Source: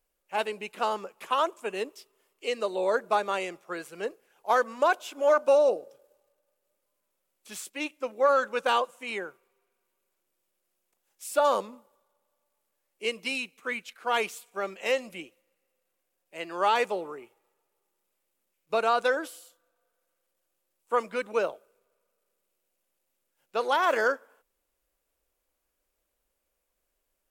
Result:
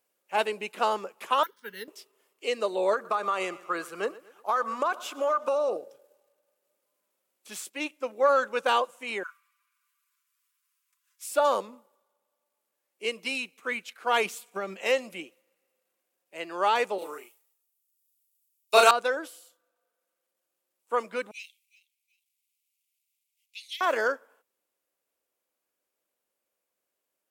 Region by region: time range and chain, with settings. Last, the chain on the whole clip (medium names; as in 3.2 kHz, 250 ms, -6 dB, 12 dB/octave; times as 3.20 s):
1.43–1.88 s: static phaser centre 1.7 kHz, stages 8 + careless resampling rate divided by 3×, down filtered, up hold + Butterworth band-stop 680 Hz, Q 0.99
2.93–5.77 s: peaking EQ 1.2 kHz +13 dB 0.33 oct + compression, threshold -25 dBFS + feedback delay 119 ms, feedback 46%, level -20 dB
9.23–11.26 s: Chebyshev high-pass 1 kHz, order 10 + comb 6.8 ms, depth 72%
14.25–14.79 s: peaking EQ 200 Hz +7 dB 0.75 oct + transient shaper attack +4 dB, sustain 0 dB + compression 2.5:1, threshold -32 dBFS
16.98–18.91 s: RIAA curve recording + doubling 34 ms -2 dB + three bands expanded up and down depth 100%
21.31–23.81 s: steep high-pass 2.1 kHz 96 dB/octave + feedback delay 368 ms, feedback 26%, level -21 dB
whole clip: gain riding within 3 dB 2 s; high-pass 180 Hz